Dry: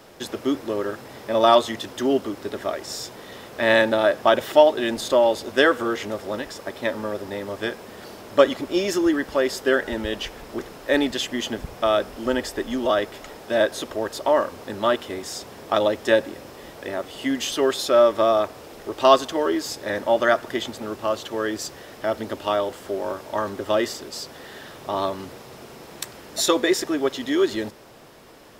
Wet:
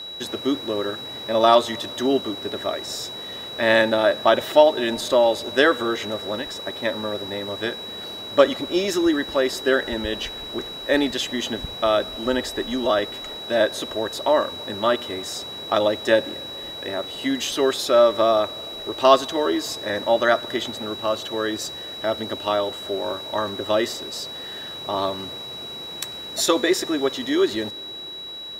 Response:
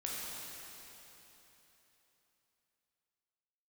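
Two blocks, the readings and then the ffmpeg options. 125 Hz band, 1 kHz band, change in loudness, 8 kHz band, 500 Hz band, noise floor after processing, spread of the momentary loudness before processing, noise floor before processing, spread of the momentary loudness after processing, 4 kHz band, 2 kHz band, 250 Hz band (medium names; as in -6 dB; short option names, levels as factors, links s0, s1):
+0.5 dB, +0.5 dB, 0.0 dB, +0.5 dB, +0.5 dB, -35 dBFS, 17 LU, -43 dBFS, 13 LU, +4.5 dB, +0.5 dB, +0.5 dB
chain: -filter_complex "[0:a]aeval=exprs='val(0)+0.0224*sin(2*PI*3900*n/s)':c=same,asplit=2[s0][s1];[1:a]atrim=start_sample=2205[s2];[s1][s2]afir=irnorm=-1:irlink=0,volume=0.0631[s3];[s0][s3]amix=inputs=2:normalize=0"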